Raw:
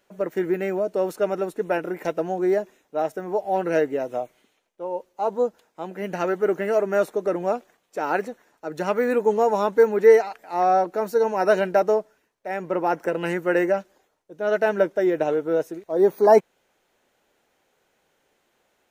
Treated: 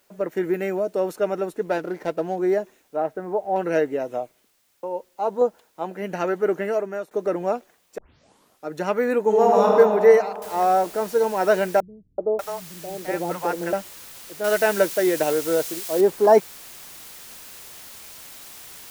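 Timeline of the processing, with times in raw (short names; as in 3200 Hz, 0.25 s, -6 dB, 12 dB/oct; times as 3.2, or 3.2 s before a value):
0.43–1 high shelf 5500 Hz +5 dB
1.63–2.36 median filter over 15 samples
2.96–3.56 LPF 1900 Hz
4.13–4.83 studio fade out
5.41–5.96 dynamic EQ 840 Hz, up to +6 dB, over -37 dBFS, Q 0.81
6.61–7.11 fade out, to -18 dB
7.98 tape start 0.71 s
9.24–9.74 reverb throw, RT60 2.4 s, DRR -2.5 dB
10.42 noise floor step -66 dB -42 dB
11.8–13.73 three bands offset in time lows, mids, highs 0.38/0.59 s, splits 190/700 Hz
14.44–16.01 high shelf 2100 Hz +9.5 dB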